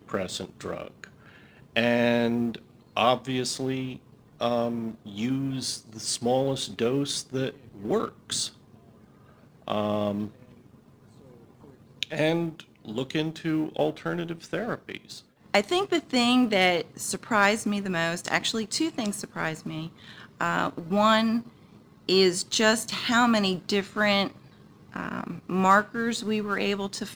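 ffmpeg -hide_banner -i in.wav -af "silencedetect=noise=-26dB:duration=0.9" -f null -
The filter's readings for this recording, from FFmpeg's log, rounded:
silence_start: 8.47
silence_end: 9.68 | silence_duration: 1.20
silence_start: 10.26
silence_end: 12.03 | silence_duration: 1.77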